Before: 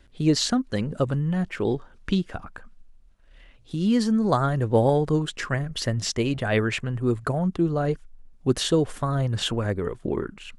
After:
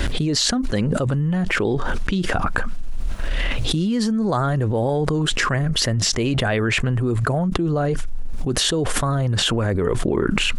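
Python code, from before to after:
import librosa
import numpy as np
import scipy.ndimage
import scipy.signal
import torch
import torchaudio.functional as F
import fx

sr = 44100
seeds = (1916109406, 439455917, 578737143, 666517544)

y = fx.env_flatten(x, sr, amount_pct=100)
y = F.gain(torch.from_numpy(y), -4.5).numpy()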